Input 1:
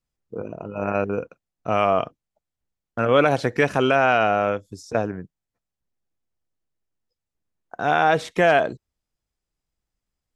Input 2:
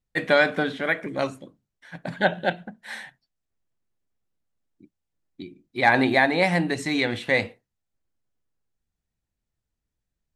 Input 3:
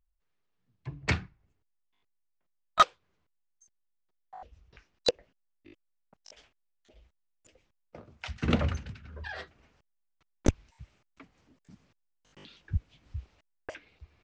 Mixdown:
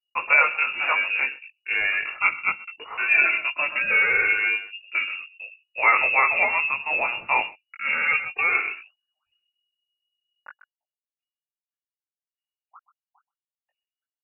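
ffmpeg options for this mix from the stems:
-filter_complex "[0:a]deesser=0.7,asplit=2[s0][s1];[s1]adelay=2.5,afreqshift=0.74[s2];[s0][s2]amix=inputs=2:normalize=1,volume=1.41,asplit=3[s3][s4][s5];[s4]volume=0.251[s6];[1:a]volume=1.41,asplit=2[s7][s8];[s8]volume=0.0841[s9];[2:a]aeval=exprs='val(0)*sin(2*PI*1700*n/s+1700*0.3/4.8*sin(2*PI*4.8*n/s))':c=same,volume=0.188,asplit=2[s10][s11];[s11]volume=0.355[s12];[s5]apad=whole_len=627783[s13];[s10][s13]sidechaincompress=threshold=0.00891:ratio=8:attack=16:release=194[s14];[s6][s9][s12]amix=inputs=3:normalize=0,aecho=0:1:127:1[s15];[s3][s7][s14][s15]amix=inputs=4:normalize=0,anlmdn=0.158,flanger=delay=18:depth=2.9:speed=1.1,lowpass=f=2500:t=q:w=0.5098,lowpass=f=2500:t=q:w=0.6013,lowpass=f=2500:t=q:w=0.9,lowpass=f=2500:t=q:w=2.563,afreqshift=-2900"

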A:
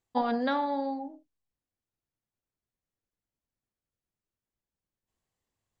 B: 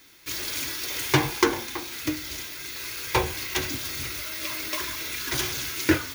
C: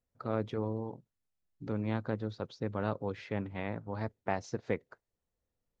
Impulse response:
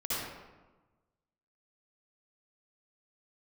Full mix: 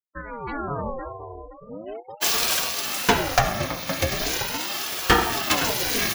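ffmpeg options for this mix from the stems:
-filter_complex "[0:a]highshelf=f=2700:g=-9.5,volume=0.501,asplit=2[s0][s1];[s1]volume=0.335[s2];[1:a]aecho=1:1:2.1:0.5,adelay=1950,volume=1.12,asplit=3[s3][s4][s5];[s4]volume=0.224[s6];[s5]volume=0.266[s7];[2:a]firequalizer=gain_entry='entry(130,0);entry(280,-16);entry(2500,6);entry(3900,5)':delay=0.05:min_phase=1,volume=0.422,asplit=2[s8][s9];[s9]volume=0.188[s10];[3:a]atrim=start_sample=2205[s11];[s6][s10]amix=inputs=2:normalize=0[s12];[s12][s11]afir=irnorm=-1:irlink=0[s13];[s2][s7]amix=inputs=2:normalize=0,aecho=0:1:516|1032|1548|2064|2580:1|0.34|0.116|0.0393|0.0134[s14];[s0][s3][s8][s13][s14]amix=inputs=5:normalize=0,afftfilt=real='re*gte(hypot(re,im),0.0126)':imag='im*gte(hypot(re,im),0.0126)':win_size=1024:overlap=0.75,dynaudnorm=f=130:g=9:m=3.76,aeval=exprs='val(0)*sin(2*PI*510*n/s+510*0.65/0.39*sin(2*PI*0.39*n/s))':c=same"

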